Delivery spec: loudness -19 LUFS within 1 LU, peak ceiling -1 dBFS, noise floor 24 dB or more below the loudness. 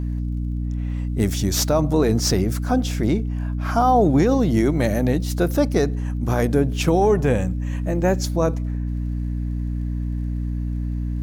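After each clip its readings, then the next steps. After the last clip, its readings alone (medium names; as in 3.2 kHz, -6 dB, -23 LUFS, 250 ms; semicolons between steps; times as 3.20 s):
tick rate 29 per s; hum 60 Hz; highest harmonic 300 Hz; hum level -22 dBFS; loudness -21.5 LUFS; peak level -7.0 dBFS; loudness target -19.0 LUFS
-> de-click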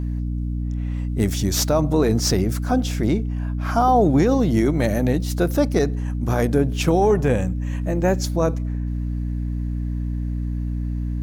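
tick rate 1.2 per s; hum 60 Hz; highest harmonic 300 Hz; hum level -22 dBFS
-> hum notches 60/120/180/240/300 Hz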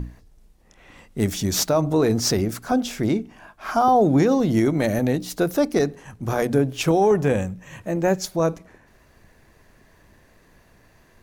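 hum not found; loudness -21.5 LUFS; peak level -8.5 dBFS; loudness target -19.0 LUFS
-> trim +2.5 dB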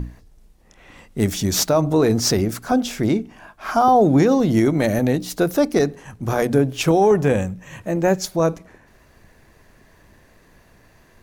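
loudness -19.0 LUFS; peak level -6.0 dBFS; noise floor -54 dBFS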